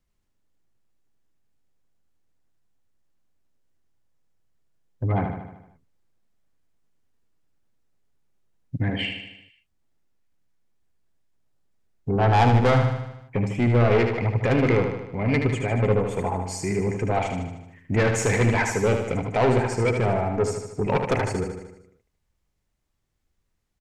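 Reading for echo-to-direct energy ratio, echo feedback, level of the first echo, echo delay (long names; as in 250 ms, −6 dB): −4.5 dB, 57%, −6.0 dB, 76 ms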